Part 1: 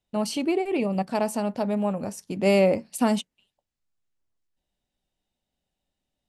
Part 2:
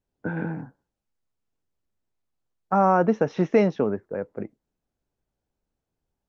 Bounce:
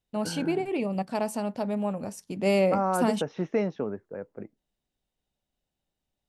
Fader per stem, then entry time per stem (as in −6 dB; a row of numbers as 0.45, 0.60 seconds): −3.5, −7.5 decibels; 0.00, 0.00 seconds